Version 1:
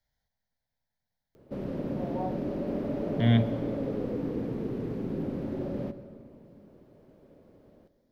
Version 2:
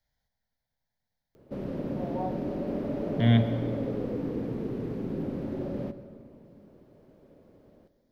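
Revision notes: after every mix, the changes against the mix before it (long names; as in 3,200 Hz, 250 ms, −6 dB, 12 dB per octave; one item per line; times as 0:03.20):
speech: send +7.0 dB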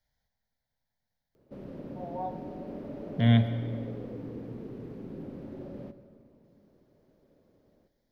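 background −8.5 dB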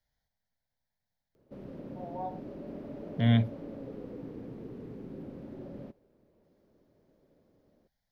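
reverb: off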